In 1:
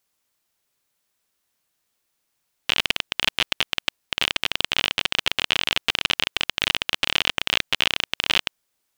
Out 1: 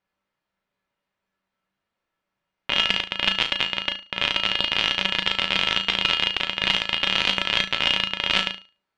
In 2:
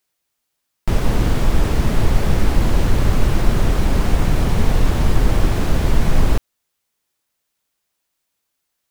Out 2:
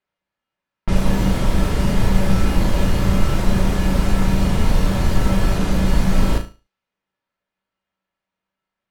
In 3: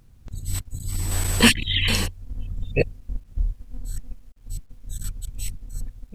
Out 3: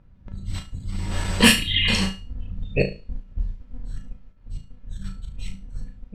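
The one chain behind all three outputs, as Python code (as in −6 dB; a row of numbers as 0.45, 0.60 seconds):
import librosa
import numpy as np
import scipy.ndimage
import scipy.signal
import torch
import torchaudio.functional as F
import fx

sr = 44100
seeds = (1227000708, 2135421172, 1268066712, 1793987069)

y = fx.comb_fb(x, sr, f0_hz=190.0, decay_s=0.3, harmonics='odd', damping=0.0, mix_pct=80)
y = fx.env_lowpass(y, sr, base_hz=2100.0, full_db=-23.0)
y = fx.room_flutter(y, sr, wall_m=6.2, rt60_s=0.31)
y = librosa.util.normalize(y) * 10.0 ** (-1.5 / 20.0)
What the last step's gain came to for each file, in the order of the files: +12.0, +10.5, +12.0 decibels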